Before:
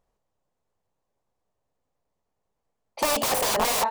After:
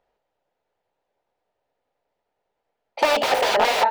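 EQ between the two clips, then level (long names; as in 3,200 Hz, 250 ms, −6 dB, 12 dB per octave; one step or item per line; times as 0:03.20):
three-way crossover with the lows and the highs turned down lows −14 dB, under 350 Hz, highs −23 dB, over 4,200 Hz
high-shelf EQ 8,600 Hz +3.5 dB
notch filter 1,100 Hz, Q 5.3
+7.5 dB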